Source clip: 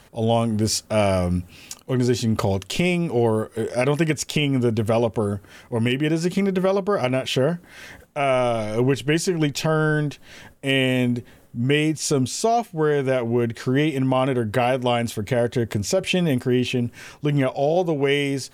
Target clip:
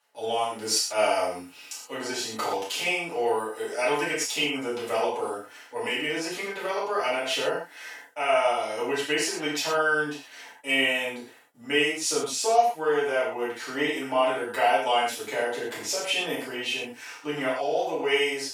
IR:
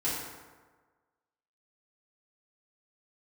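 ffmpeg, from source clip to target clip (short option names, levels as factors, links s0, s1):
-filter_complex "[0:a]agate=range=0.178:threshold=0.00631:ratio=16:detection=peak,highpass=690[s0];[1:a]atrim=start_sample=2205,atrim=end_sample=6174,asetrate=42777,aresample=44100[s1];[s0][s1]afir=irnorm=-1:irlink=0,volume=0.501"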